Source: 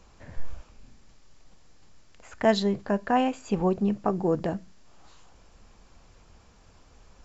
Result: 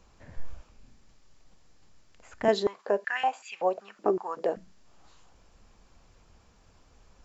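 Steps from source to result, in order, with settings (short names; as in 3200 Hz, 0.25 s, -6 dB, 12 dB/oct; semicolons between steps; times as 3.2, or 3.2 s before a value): 2.48–4.57 stepped high-pass 5.3 Hz 350–2400 Hz; gain -4 dB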